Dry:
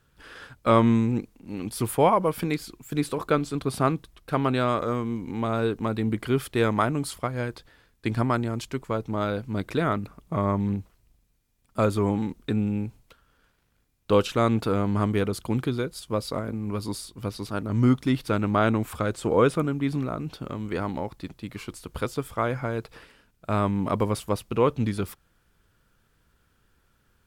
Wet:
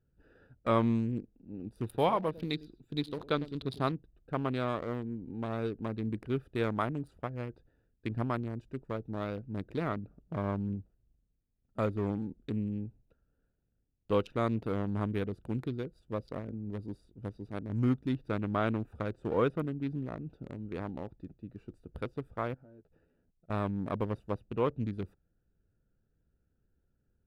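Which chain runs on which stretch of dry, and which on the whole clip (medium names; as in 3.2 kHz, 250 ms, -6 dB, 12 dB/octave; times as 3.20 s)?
1.84–3.92 s: peaking EQ 3.8 kHz +15 dB 0.49 oct + delay 103 ms -15 dB
22.54–23.50 s: doubling 12 ms -4 dB + compression 2:1, threshold -56 dBFS + hysteresis with a dead band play -56.5 dBFS
whole clip: local Wiener filter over 41 samples; dynamic bell 7.8 kHz, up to -7 dB, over -58 dBFS, Q 1.5; trim -8 dB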